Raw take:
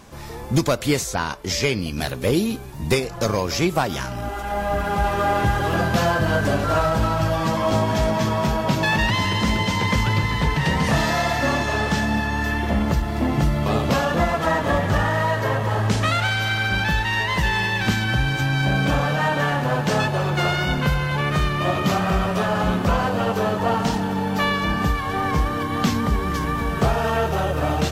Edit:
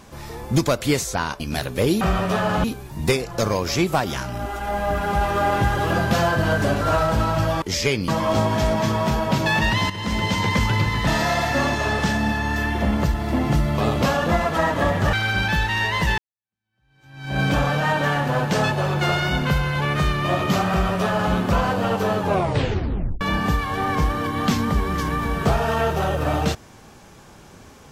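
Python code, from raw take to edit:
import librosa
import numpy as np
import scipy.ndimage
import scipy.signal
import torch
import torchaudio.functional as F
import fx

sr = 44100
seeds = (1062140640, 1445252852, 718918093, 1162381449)

y = fx.edit(x, sr, fx.move(start_s=1.4, length_s=0.46, to_s=7.45),
    fx.fade_in_from(start_s=9.27, length_s=0.38, floor_db=-12.5),
    fx.cut(start_s=10.44, length_s=0.51),
    fx.cut(start_s=15.01, length_s=1.48),
    fx.fade_in_span(start_s=17.54, length_s=1.22, curve='exp'),
    fx.duplicate(start_s=22.07, length_s=0.63, to_s=2.47),
    fx.tape_stop(start_s=23.55, length_s=1.02), tone=tone)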